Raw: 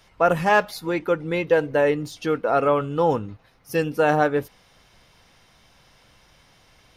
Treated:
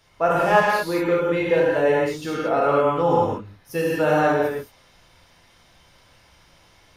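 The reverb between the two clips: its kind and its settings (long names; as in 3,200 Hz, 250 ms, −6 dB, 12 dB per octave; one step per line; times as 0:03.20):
reverb whose tail is shaped and stops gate 250 ms flat, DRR −5.5 dB
level −5 dB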